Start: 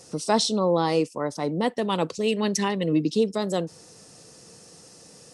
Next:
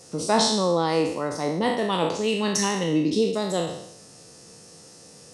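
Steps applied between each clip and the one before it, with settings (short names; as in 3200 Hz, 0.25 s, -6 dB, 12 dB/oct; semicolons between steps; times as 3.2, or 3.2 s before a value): spectral trails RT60 0.77 s; gain -1 dB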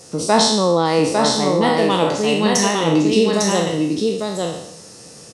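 echo 0.852 s -3.5 dB; gain +6 dB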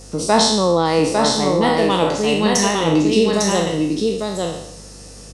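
hum 50 Hz, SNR 24 dB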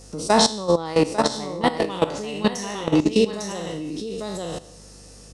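level quantiser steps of 15 dB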